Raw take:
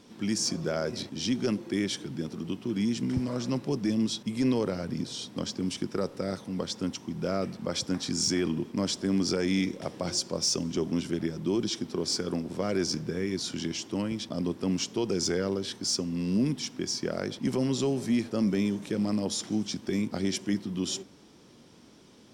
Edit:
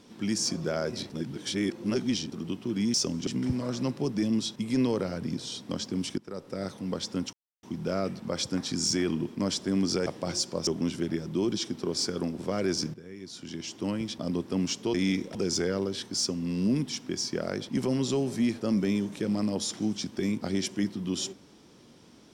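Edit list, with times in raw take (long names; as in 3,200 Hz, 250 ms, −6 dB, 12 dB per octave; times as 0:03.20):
0:01.10–0:02.32: reverse
0:05.85–0:06.40: fade in, from −18.5 dB
0:07.00: splice in silence 0.30 s
0:09.43–0:09.84: move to 0:15.05
0:10.45–0:10.78: move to 0:02.94
0:13.05–0:13.99: fade in quadratic, from −14.5 dB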